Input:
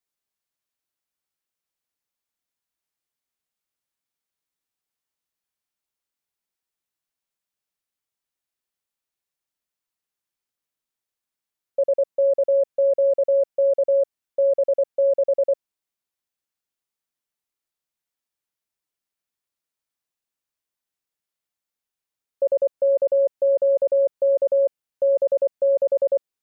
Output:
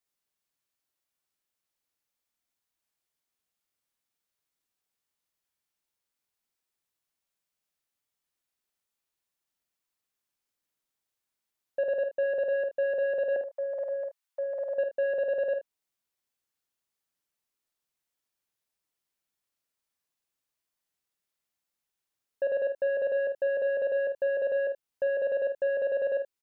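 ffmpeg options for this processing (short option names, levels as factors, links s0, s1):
-filter_complex "[0:a]asettb=1/sr,asplit=3[s0][s1][s2];[s0]atrim=end=13.364[s3];[s1]atrim=start=13.36:end=14.74,asetpts=PTS-STARTPTS,afade=t=in:d=0.004:c=qsin,afade=t=out:st=1.376:d=0.004:c=qsin,highpass=f=760:w=0.5412,highpass=f=760:w=1.3066[s4];[s2]atrim=start=14.736[s5];[s3][s4]acrossfade=d=0.004:c1=hsin:c2=qsin[s6];[s6][s5]acrossfade=d=0.004:c1=qsin:c2=hsin,alimiter=limit=0.119:level=0:latency=1:release=286,asoftclip=type=tanh:threshold=0.075,aecho=1:1:50|77:0.447|0.2"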